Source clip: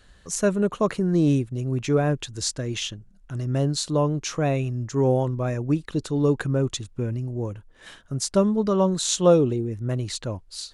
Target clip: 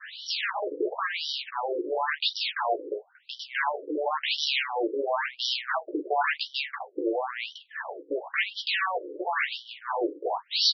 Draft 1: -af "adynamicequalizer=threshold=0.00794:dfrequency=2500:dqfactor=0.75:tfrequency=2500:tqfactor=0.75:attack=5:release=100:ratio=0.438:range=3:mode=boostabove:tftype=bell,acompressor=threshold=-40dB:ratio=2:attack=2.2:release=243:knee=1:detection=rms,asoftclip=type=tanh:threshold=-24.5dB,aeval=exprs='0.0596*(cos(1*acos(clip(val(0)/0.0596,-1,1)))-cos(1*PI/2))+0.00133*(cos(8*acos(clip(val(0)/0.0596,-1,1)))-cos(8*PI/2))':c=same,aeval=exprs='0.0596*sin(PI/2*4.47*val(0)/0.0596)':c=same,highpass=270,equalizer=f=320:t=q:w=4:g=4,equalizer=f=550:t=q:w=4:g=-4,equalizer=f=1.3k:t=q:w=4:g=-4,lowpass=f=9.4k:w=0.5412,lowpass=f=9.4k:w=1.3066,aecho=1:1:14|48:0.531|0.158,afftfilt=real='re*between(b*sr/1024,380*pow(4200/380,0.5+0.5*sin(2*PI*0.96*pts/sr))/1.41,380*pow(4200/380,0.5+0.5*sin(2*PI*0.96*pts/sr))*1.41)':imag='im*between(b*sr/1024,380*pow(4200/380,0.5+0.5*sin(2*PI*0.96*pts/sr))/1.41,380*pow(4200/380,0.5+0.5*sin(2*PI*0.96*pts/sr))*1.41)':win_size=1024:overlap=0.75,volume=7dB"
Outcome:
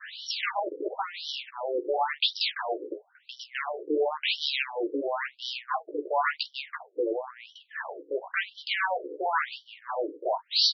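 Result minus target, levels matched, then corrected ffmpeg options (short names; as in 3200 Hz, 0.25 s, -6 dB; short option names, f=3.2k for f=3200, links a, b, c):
compressor: peak gain reduction +5.5 dB
-af "adynamicequalizer=threshold=0.00794:dfrequency=2500:dqfactor=0.75:tfrequency=2500:tqfactor=0.75:attack=5:release=100:ratio=0.438:range=3:mode=boostabove:tftype=bell,acompressor=threshold=-29dB:ratio=2:attack=2.2:release=243:knee=1:detection=rms,asoftclip=type=tanh:threshold=-24.5dB,aeval=exprs='0.0596*(cos(1*acos(clip(val(0)/0.0596,-1,1)))-cos(1*PI/2))+0.00133*(cos(8*acos(clip(val(0)/0.0596,-1,1)))-cos(8*PI/2))':c=same,aeval=exprs='0.0596*sin(PI/2*4.47*val(0)/0.0596)':c=same,highpass=270,equalizer=f=320:t=q:w=4:g=4,equalizer=f=550:t=q:w=4:g=-4,equalizer=f=1.3k:t=q:w=4:g=-4,lowpass=f=9.4k:w=0.5412,lowpass=f=9.4k:w=1.3066,aecho=1:1:14|48:0.531|0.158,afftfilt=real='re*between(b*sr/1024,380*pow(4200/380,0.5+0.5*sin(2*PI*0.96*pts/sr))/1.41,380*pow(4200/380,0.5+0.5*sin(2*PI*0.96*pts/sr))*1.41)':imag='im*between(b*sr/1024,380*pow(4200/380,0.5+0.5*sin(2*PI*0.96*pts/sr))/1.41,380*pow(4200/380,0.5+0.5*sin(2*PI*0.96*pts/sr))*1.41)':win_size=1024:overlap=0.75,volume=7dB"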